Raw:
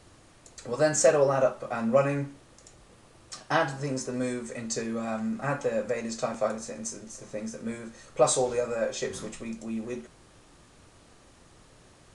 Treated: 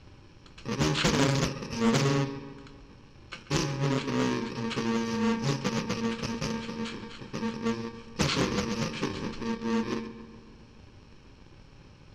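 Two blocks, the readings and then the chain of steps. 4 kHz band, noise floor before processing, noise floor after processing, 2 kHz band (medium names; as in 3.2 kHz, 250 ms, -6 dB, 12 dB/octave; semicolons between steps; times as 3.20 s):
+7.5 dB, -57 dBFS, -53 dBFS, +1.0 dB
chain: bit-reversed sample order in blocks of 64 samples; low-pass 5.4 kHz 24 dB/octave; treble shelf 3.8 kHz -7.5 dB; on a send: filtered feedback delay 138 ms, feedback 59%, low-pass 4.1 kHz, level -13 dB; on the sum: loudspeaker Doppler distortion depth 0.54 ms; trim +6.5 dB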